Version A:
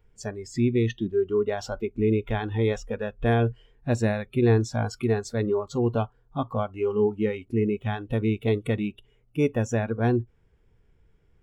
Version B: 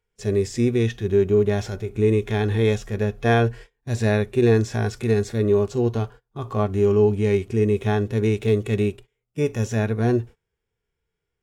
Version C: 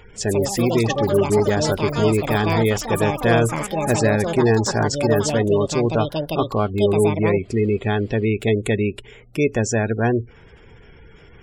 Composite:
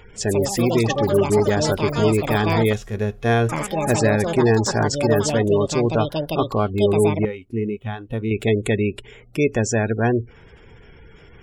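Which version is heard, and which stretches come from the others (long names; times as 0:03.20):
C
0:02.73–0:03.49: punch in from B
0:07.25–0:08.31: punch in from A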